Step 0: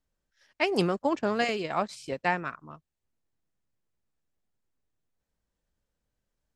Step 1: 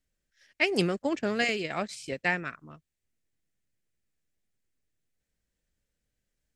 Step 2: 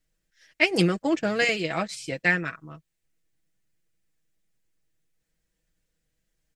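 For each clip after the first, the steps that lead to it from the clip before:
graphic EQ 1000/2000/8000 Hz -10/+6/+4 dB
comb 6.2 ms, depth 63%; gain +3 dB

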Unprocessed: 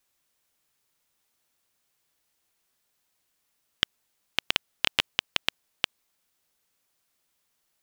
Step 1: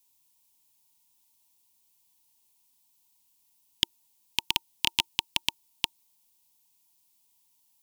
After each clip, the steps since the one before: EQ curve 340 Hz 0 dB, 630 Hz -29 dB, 920 Hz +9 dB, 1300 Hz -19 dB, 2600 Hz 0 dB, 14000 Hz +10 dB; gain -1 dB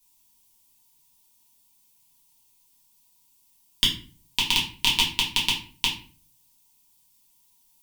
shoebox room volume 31 m³, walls mixed, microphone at 1.1 m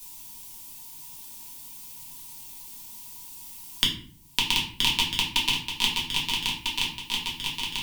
swung echo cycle 1.298 s, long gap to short 3:1, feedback 38%, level -6.5 dB; three-band squash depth 70%

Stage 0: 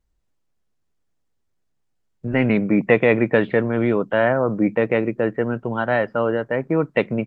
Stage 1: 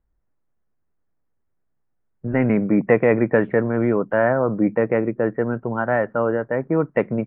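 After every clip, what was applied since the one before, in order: LPF 1900 Hz 24 dB/oct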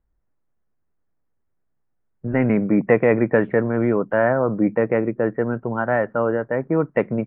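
nothing audible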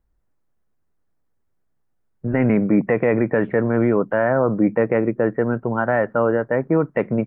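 limiter -10.5 dBFS, peak gain reduction 7 dB; gain +2.5 dB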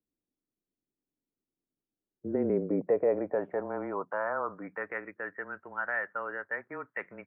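frequency shift -20 Hz; band-pass sweep 290 Hz -> 1800 Hz, 1.9–5.09; gain -4 dB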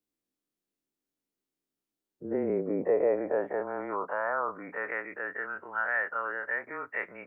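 spectral dilation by 60 ms; low shelf 280 Hz -8 dB

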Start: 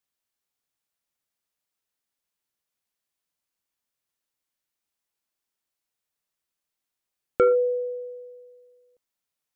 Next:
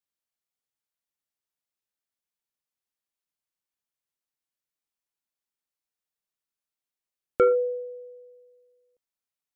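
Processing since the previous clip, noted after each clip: upward expander 1.5:1, over -30 dBFS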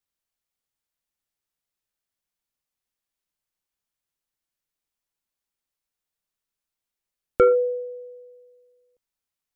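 low shelf 76 Hz +10.5 dB; gain +3 dB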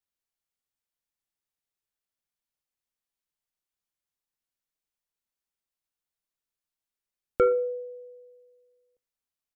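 feedback echo 60 ms, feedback 39%, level -22 dB; gain -5 dB

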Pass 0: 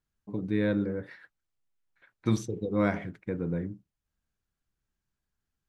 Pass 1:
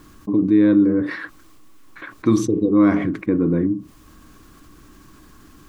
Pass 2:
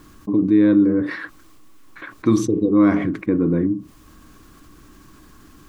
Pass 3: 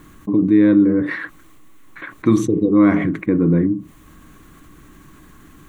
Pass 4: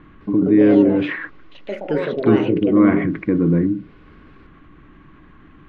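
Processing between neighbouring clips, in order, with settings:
small resonant body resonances 300/1100 Hz, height 17 dB, ringing for 45 ms; fast leveller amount 50%
nothing audible
thirty-one-band EQ 160 Hz +6 dB, 2000 Hz +5 dB, 5000 Hz -11 dB; gain +1.5 dB
LPF 3000 Hz 24 dB/oct; echoes that change speed 0.208 s, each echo +5 st, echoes 2, each echo -6 dB; gain -1 dB

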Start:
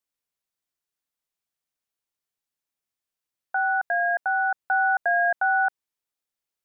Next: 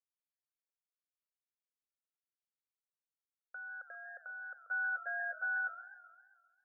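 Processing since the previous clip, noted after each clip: level quantiser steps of 11 dB; double band-pass 830 Hz, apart 1.3 oct; warbling echo 0.133 s, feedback 59%, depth 179 cents, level -14.5 dB; gain -3.5 dB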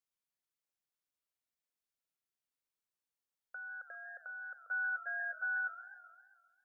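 dynamic EQ 550 Hz, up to -7 dB, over -55 dBFS, Q 0.91; gain +1 dB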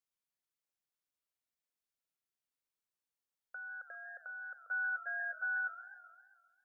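nothing audible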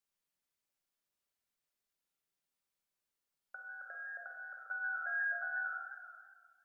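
shoebox room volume 690 m³, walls mixed, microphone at 1.2 m; gain +1 dB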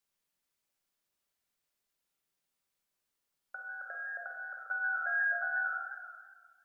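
dynamic EQ 680 Hz, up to +3 dB, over -55 dBFS, Q 0.85; gain +4 dB

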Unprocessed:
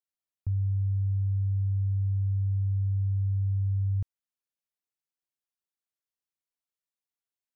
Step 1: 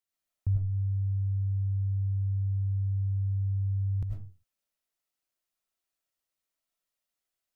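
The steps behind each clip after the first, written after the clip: reverb RT60 0.35 s, pre-delay 62 ms, DRR -2 dB; gain +2 dB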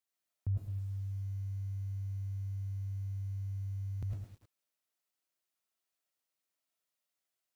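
HPF 150 Hz 6 dB/oct; lo-fi delay 0.107 s, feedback 35%, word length 10-bit, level -7 dB; gain -1 dB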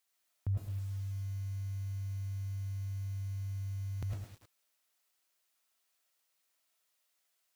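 low shelf 430 Hz -10 dB; gain +9.5 dB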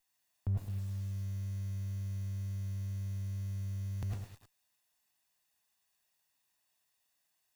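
minimum comb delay 1.1 ms; gain +1 dB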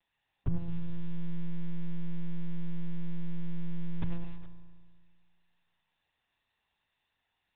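monotone LPC vocoder at 8 kHz 170 Hz; spring tank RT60 1.8 s, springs 35 ms, chirp 70 ms, DRR 9.5 dB; gain +5 dB

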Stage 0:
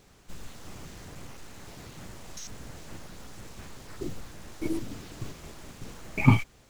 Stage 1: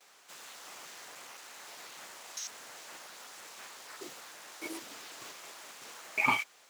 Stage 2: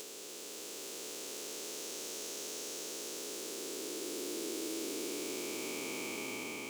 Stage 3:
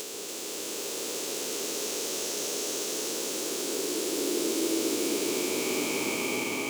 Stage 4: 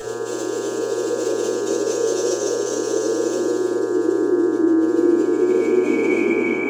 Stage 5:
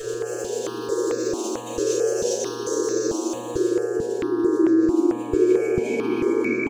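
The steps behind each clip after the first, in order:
HPF 780 Hz 12 dB/oct; gate with hold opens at -53 dBFS; gain +2.5 dB
time blur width 1.43 s; upward compressor, threshold -50 dBFS; EQ curve 150 Hz 0 dB, 230 Hz +7 dB, 420 Hz +13 dB, 740 Hz -8 dB, 1900 Hz -11 dB, 2700 Hz -2 dB, 7900 Hz +3 dB; gain +7 dB
echo with dull and thin repeats by turns 0.142 s, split 1200 Hz, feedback 59%, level -2.5 dB; gain +9 dB
spectral contrast raised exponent 2.4; buzz 120 Hz, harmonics 15, -47 dBFS 0 dB/oct; shoebox room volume 200 m³, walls furnished, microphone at 6.2 m
echo 0.124 s -10 dB; step phaser 4.5 Hz 220–3100 Hz

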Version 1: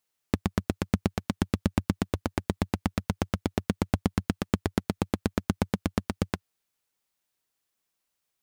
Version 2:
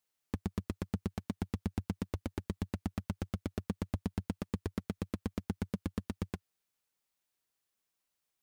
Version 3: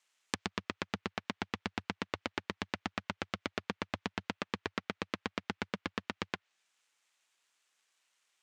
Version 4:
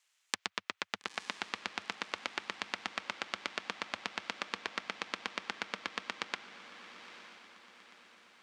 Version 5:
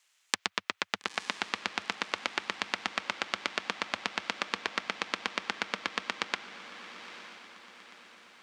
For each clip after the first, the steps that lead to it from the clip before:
soft clip -20 dBFS, distortion -8 dB; gain -4 dB
median filter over 9 samples; weighting filter ITU-R 468; treble ducked by the level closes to 2500 Hz, closed at -47 dBFS; gain +8.5 dB
half-wave gain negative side -3 dB; HPF 1100 Hz 6 dB/oct; diffused feedback echo 0.912 s, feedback 48%, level -11.5 dB; gain +3.5 dB
HPF 63 Hz; gain +5.5 dB

